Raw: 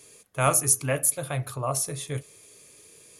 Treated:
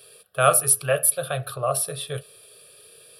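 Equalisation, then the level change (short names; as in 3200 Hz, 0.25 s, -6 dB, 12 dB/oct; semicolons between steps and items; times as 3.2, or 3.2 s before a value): low shelf 63 Hz -9 dB; low shelf 210 Hz -6.5 dB; fixed phaser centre 1400 Hz, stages 8; +7.5 dB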